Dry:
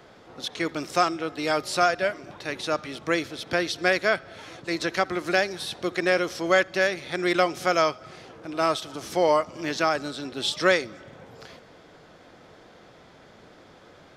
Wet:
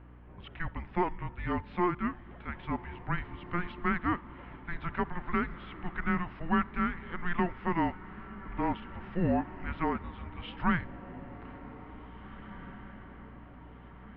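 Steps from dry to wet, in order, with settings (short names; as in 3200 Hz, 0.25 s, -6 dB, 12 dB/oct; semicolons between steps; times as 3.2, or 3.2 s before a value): diffused feedback echo 1.947 s, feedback 50%, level -15.5 dB; mistuned SSB -350 Hz 170–2800 Hz; hum 60 Hz, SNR 18 dB; gain -7 dB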